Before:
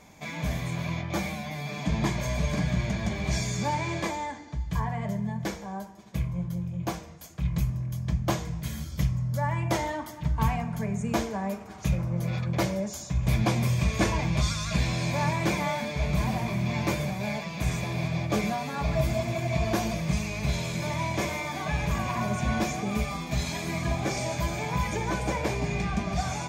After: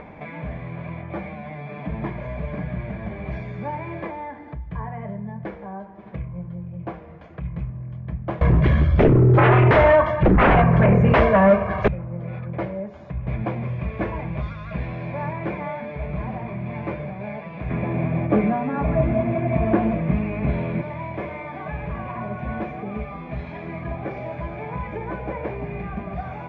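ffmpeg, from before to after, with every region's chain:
-filter_complex "[0:a]asettb=1/sr,asplit=3[a][b][c];[a]atrim=end=8.414[d];[b]atrim=start=8.41:end=11.88,asetpts=PTS-STARTPTS,afade=t=in:d=0.004:c=qsin,afade=t=out:st=3.466:d=0.004:c=qsin,equalizer=f=440:t=o:w=0.24:g=-13,aecho=1:1:1.8:0.91,atrim=end_sample=153027,aeval=exprs='0.355*sin(PI/2*6.31*val(0)/0.355)':c=same[e];[c]atrim=start=11.876[f];[d][e]acrossfade=d=0.004:c1=hsin:c2=qsin[g];[g][f]acrossfade=d=0.004:c1=qsin:c2=hsin,asettb=1/sr,asplit=3[h][i][j];[h]atrim=end=17.704[k];[i]atrim=start=17.7:end=20.82,asetpts=PTS-STARTPTS,afade=t=in:d=0.004:c=qsin,afade=t=out:st=3.116:d=0.004:c=qsin,equalizer=f=260:t=o:w=0.74:g=9,acontrast=55,lowpass=3.2k[l];[j]atrim=start=20.816[m];[k][l]acrossfade=d=0.004:c1=hsin:c2=qsin[n];[n][m]acrossfade=d=0.004:c1=qsin:c2=hsin,acompressor=mode=upward:threshold=-27dB:ratio=2.5,lowpass=f=2.3k:w=0.5412,lowpass=f=2.3k:w=1.3066,equalizer=f=490:t=o:w=0.91:g=5,volume=-2.5dB"

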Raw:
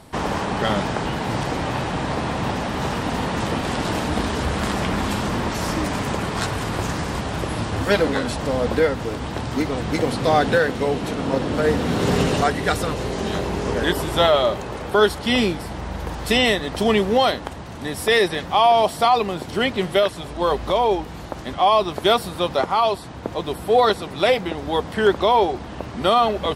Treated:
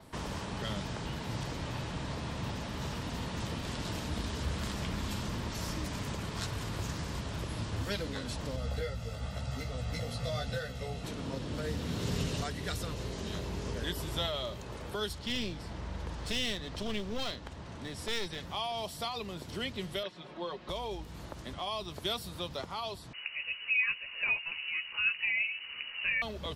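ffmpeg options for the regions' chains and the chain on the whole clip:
-filter_complex "[0:a]asettb=1/sr,asplit=3[a][b][c];[a]atrim=end=8.564[d];[b]atrim=start=8.56:end=11.04,asetpts=PTS-STARTPTS,afade=t=in:d=0.004:c=qsin,afade=t=out:st=2.476:d=0.004:c=qsin,aecho=1:1:1.5:0.83,atrim=end_sample=109368,flanger=delay=15:depth=2.4:speed=1[e];[c]atrim=start=11.036[f];[d][e]acrossfade=d=0.004:c1=hsin:c2=qsin[g];[g][f]acrossfade=d=0.004:c1=qsin:c2=hsin,asettb=1/sr,asplit=3[h][i][j];[h]atrim=end=15.134[k];[i]atrim=start=15.13:end=18.4,asetpts=PTS-STARTPTS,afade=t=in:d=0.004:c=qsin,afade=t=out:st=3.266:d=0.004:c=qsin,lowpass=7.2k,aeval=exprs='clip(val(0),-1,0.0668)':c=same[l];[j]atrim=start=18.396[m];[k][l]acrossfade=d=0.004:c1=hsin:c2=qsin[n];[n][m]acrossfade=d=0.004:c1=qsin:c2=hsin,asettb=1/sr,asplit=3[o][p][q];[o]atrim=end=20.034[r];[p]atrim=start=20.03:end=20.69,asetpts=PTS-STARTPTS,afade=t=in:d=0.004:c=qsin,afade=t=out:st=0.656:d=0.004:c=qsin,highpass=230,lowpass=3.2k,aecho=1:1:5.5:0.6,atrim=end_sample=29106[s];[q]atrim=start=20.686[t];[r][s]acrossfade=d=0.004:c1=hsin:c2=qsin[u];[u][t]acrossfade=d=0.004:c1=qsin:c2=hsin,asettb=1/sr,asplit=3[v][w][x];[v]atrim=end=23.134[y];[w]atrim=start=23.13:end=26.22,asetpts=PTS-STARTPTS,afade=t=in:d=0.004:c=qsin,afade=t=out:st=3.086:d=0.004:c=qsin,asplit=2[z][aa];[aa]adelay=14,volume=-7dB[ab];[z][ab]amix=inputs=2:normalize=0,atrim=end_sample=136269,lowpass=f=2.6k:t=q:w=0.5098,lowpass=f=2.6k:t=q:w=0.6013,lowpass=f=2.6k:t=q:w=0.9,lowpass=f=2.6k:t=q:w=2.563,afreqshift=-3000[ac];[x]atrim=start=26.216[ad];[y][ac]acrossfade=d=0.004:c1=hsin:c2=qsin[ae];[ae][ad]acrossfade=d=0.004:c1=qsin:c2=hsin,bandreject=f=770:w=12,adynamicequalizer=threshold=0.00224:dfrequency=9300:dqfactor=2.3:tfrequency=9300:tqfactor=2.3:attack=5:release=100:ratio=0.375:range=2.5:mode=cutabove:tftype=bell,acrossover=split=160|3000[af][ag][ah];[ag]acompressor=threshold=-38dB:ratio=2[ai];[af][ai][ah]amix=inputs=3:normalize=0,volume=-8.5dB"

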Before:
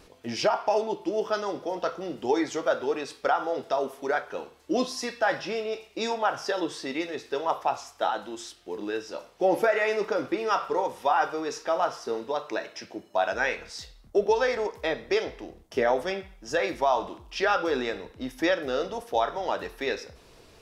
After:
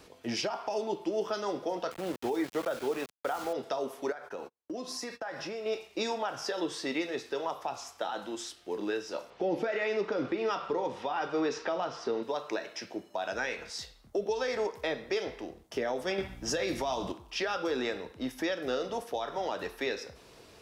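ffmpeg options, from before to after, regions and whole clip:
-filter_complex "[0:a]asettb=1/sr,asplit=3[a][b][c];[a]atrim=end=1.914[d];[b]atrim=start=1.91:end=3.53,asetpts=PTS-STARTPTS,afade=t=in:d=0.004:c=qsin,afade=t=out:st=1.616:d=0.004:c=qsin,lowpass=2.9k,aeval=exprs='val(0)*gte(abs(val(0)),0.015)':c=same[e];[c]atrim=start=3.526[f];[d][e]acrossfade=d=0.004:c1=hsin:c2=qsin[g];[g][f]acrossfade=d=0.004:c1=qsin:c2=hsin,asettb=1/sr,asplit=3[h][i][j];[h]atrim=end=4.124[k];[i]atrim=start=4.12:end=5.66,asetpts=PTS-STARTPTS,afade=t=in:d=0.004:c=qsin,afade=t=out:st=1.536:d=0.004:c=qsin,agate=range=-39dB:threshold=-45dB:ratio=16:release=100:detection=peak,equalizer=f=3.2k:t=o:w=0.65:g=-6,acompressor=threshold=-34dB:ratio=8:attack=3.2:release=140:knee=1:detection=peak[l];[j]atrim=start=5.656[m];[k][l]acrossfade=d=0.004:c1=hsin:c2=qsin[n];[n][m]acrossfade=d=0.004:c1=qsin:c2=hsin,asettb=1/sr,asplit=3[o][p][q];[o]atrim=end=9.304[r];[p]atrim=start=9.3:end=12.23,asetpts=PTS-STARTPTS,afade=t=in:d=0.004:c=qsin,afade=t=out:st=2.926:d=0.004:c=qsin,lowpass=3.7k,acontrast=34[s];[q]atrim=start=12.226[t];[r][s]acrossfade=d=0.004:c1=hsin:c2=qsin[u];[u][t]acrossfade=d=0.004:c1=qsin:c2=hsin,asettb=1/sr,asplit=3[v][w][x];[v]atrim=end=16.184[y];[w]atrim=start=16.18:end=17.12,asetpts=PTS-STARTPTS,afade=t=in:d=0.004:c=qsin,afade=t=out:st=0.936:d=0.004:c=qsin,asplit=2[z][aa];[aa]adelay=26,volume=-11.5dB[ab];[z][ab]amix=inputs=2:normalize=0,atrim=end_sample=41454,acontrast=86,aeval=exprs='val(0)+0.00708*(sin(2*PI*60*n/s)+sin(2*PI*2*60*n/s)/2+sin(2*PI*3*60*n/s)/3+sin(2*PI*4*60*n/s)/4+sin(2*PI*5*60*n/s)/5)':c=same[ac];[x]atrim=start=17.116[ad];[y][ac]acrossfade=d=0.004:c1=hsin:c2=qsin[ae];[ae][ad]acrossfade=d=0.004:c1=qsin:c2=hsin,highpass=f=100:p=1,acrossover=split=360|3000[af][ag][ah];[ag]acompressor=threshold=-29dB:ratio=6[ai];[af][ai][ah]amix=inputs=3:normalize=0,alimiter=limit=-22dB:level=0:latency=1:release=169"

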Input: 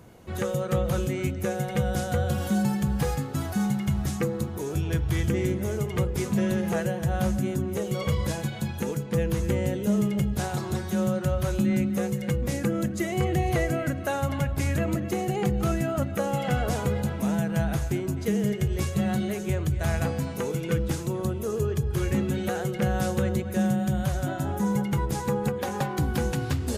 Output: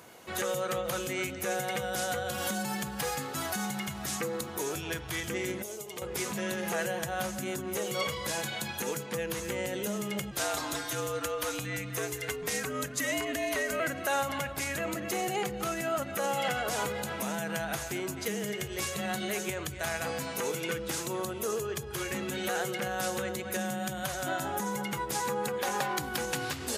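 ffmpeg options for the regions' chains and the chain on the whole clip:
-filter_complex "[0:a]asettb=1/sr,asplit=3[a][b][c];[a]atrim=end=5.624[d];[b]atrim=start=5.62:end=6.02,asetpts=PTS-STARTPTS,afade=t=in:d=0.004:c=qsin,afade=t=out:st=0.396:d=0.004:c=qsin,equalizer=f=1.6k:w=0.81:g=-14,acompressor=threshold=-29dB:ratio=4:attack=3.2:release=140:knee=1:detection=peak,highpass=f=480:p=1[e];[c]atrim=start=6.016[f];[d][e]acrossfade=d=0.004:c1=hsin:c2=qsin[g];[g][f]acrossfade=d=0.004:c1=qsin:c2=hsin,asettb=1/sr,asplit=3[h][i][j];[h]atrim=end=10.314[k];[i]atrim=start=10.31:end=13.8,asetpts=PTS-STARTPTS,afade=t=in:d=0.004:c=qsin,afade=t=out:st=3.486:d=0.004:c=qsin,equalizer=f=89:t=o:w=1.9:g=-6,afreqshift=-71[l];[j]atrim=start=13.796[m];[k][l]acrossfade=d=0.004:c1=hsin:c2=qsin[n];[n][m]acrossfade=d=0.004:c1=qsin:c2=hsin,alimiter=limit=-22dB:level=0:latency=1:release=67,highpass=f=1.1k:p=1,volume=7dB"

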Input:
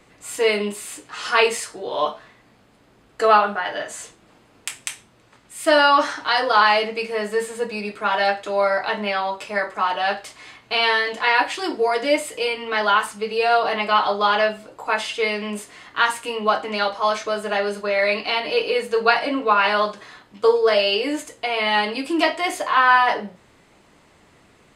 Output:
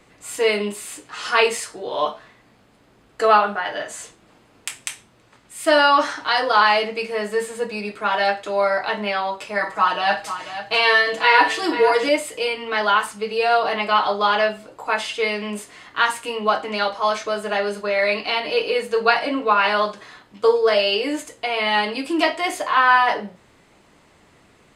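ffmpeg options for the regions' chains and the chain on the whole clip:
-filter_complex "[0:a]asettb=1/sr,asplit=3[a][b][c];[a]atrim=end=9.604[d];[b]atrim=start=9.6:end=12.09,asetpts=PTS-STARTPTS,afade=t=in:d=0.004:c=qsin,afade=t=out:st=2.486:d=0.004:c=qsin,aecho=1:1:6.2:0.88,atrim=end_sample=109809,aecho=1:1:51|491:0.237|0.282,atrim=end_sample=109809[e];[c]atrim=start=12.086[f];[d][e]acrossfade=d=0.004:c1=hsin:c2=qsin[g];[g][f]acrossfade=d=0.004:c1=qsin:c2=hsin"

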